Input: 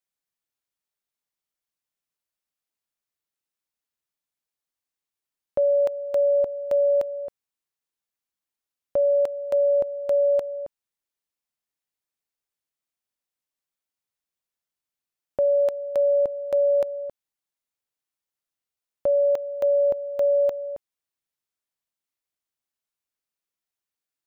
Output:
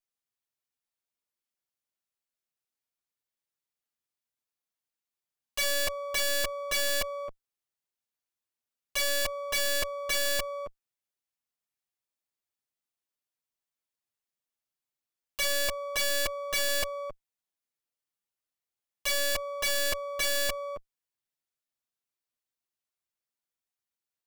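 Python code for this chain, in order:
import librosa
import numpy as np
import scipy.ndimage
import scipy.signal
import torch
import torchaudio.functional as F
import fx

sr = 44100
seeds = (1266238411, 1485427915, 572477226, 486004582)

y = fx.lower_of_two(x, sr, delay_ms=8.3)
y = (np.mod(10.0 ** (22.0 / 20.0) * y + 1.0, 2.0) - 1.0) / 10.0 ** (22.0 / 20.0)
y = y * 10.0 ** (-2.0 / 20.0)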